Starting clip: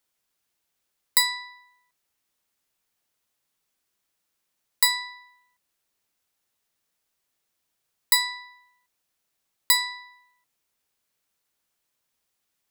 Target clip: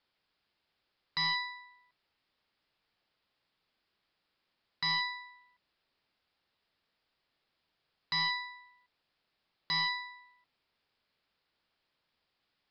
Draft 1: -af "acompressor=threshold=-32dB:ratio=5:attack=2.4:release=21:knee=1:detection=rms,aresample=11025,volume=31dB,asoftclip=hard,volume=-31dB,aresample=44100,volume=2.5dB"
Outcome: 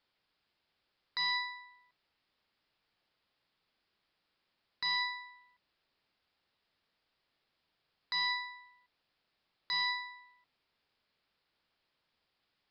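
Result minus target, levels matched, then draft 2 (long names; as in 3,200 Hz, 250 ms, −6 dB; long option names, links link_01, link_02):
downward compressor: peak gain reduction +7.5 dB
-af "acompressor=threshold=-22.5dB:ratio=5:attack=2.4:release=21:knee=1:detection=rms,aresample=11025,volume=31dB,asoftclip=hard,volume=-31dB,aresample=44100,volume=2.5dB"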